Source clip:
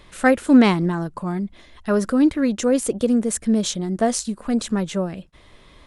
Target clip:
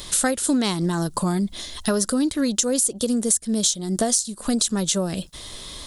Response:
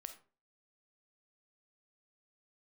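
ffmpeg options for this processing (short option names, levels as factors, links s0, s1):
-af "aexciter=amount=6.4:drive=4.2:freq=3400,acompressor=threshold=0.0501:ratio=10,volume=2.37"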